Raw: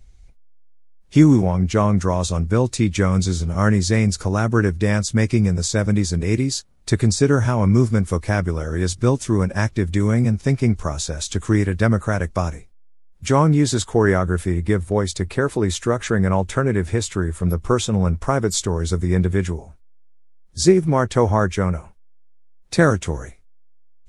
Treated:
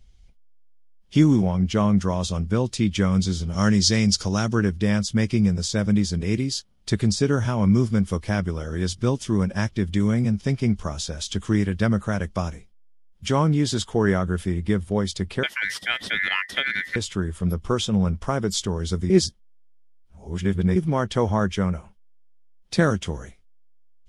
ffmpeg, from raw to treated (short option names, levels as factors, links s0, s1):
-filter_complex "[0:a]asettb=1/sr,asplit=3[s0][s1][s2];[s0]atrim=end=3.534[s3];[s1]atrim=start=3.53:end=4.55,asetpts=PTS-STARTPTS,afade=t=in:d=0.004:c=qsin,afade=t=out:st=1.016:d=0.004:c=qsin,equalizer=f=5400:w=0.88:g=10.5[s4];[s2]atrim=start=4.546[s5];[s3][s4]acrossfade=d=0.004:c1=hsin:c2=qsin[s6];[s6][s5]acrossfade=d=0.004:c1=qsin:c2=hsin,asettb=1/sr,asplit=3[s7][s8][s9];[s7]atrim=end=15.434[s10];[s8]atrim=start=15.43:end=16.96,asetpts=PTS-STARTPTS,afade=t=in:d=0.004:c=qsin,afade=t=out:st=1.526:d=0.004:c=qsin,aeval=exprs='val(0)*sin(2*PI*1900*n/s)':c=same[s11];[s9]atrim=start=16.956[s12];[s10][s11]acrossfade=d=0.004:c1=hsin:c2=qsin[s13];[s13][s12]acrossfade=d=0.004:c1=qsin:c2=hsin,asplit=3[s14][s15][s16];[s14]atrim=end=19.102[s17];[s15]atrim=start=19.098:end=20.762,asetpts=PTS-STARTPTS,areverse[s18];[s16]atrim=start=20.758[s19];[s17][s18]acrossfade=d=0.004:c1=hsin:c2=hsin[s20];[s20][s19]acrossfade=d=0.004:c1=hsin:c2=hsin,equalizer=f=200:t=o:w=0.33:g=7,equalizer=f=3150:t=o:w=0.33:g=10,equalizer=f=5000:t=o:w=0.33:g=5,equalizer=f=8000:t=o:w=0.33:g=-3,volume=0.531"